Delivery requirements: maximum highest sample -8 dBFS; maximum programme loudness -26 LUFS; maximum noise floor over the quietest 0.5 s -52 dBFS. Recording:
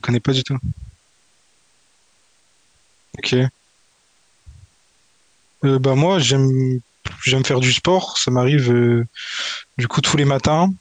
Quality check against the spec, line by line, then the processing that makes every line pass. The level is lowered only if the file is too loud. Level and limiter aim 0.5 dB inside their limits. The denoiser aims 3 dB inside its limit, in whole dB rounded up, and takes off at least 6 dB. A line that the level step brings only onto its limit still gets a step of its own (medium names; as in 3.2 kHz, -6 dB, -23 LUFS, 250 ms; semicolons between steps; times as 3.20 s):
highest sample -6.0 dBFS: fail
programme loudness -18.0 LUFS: fail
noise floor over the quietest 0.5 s -59 dBFS: pass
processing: trim -8.5 dB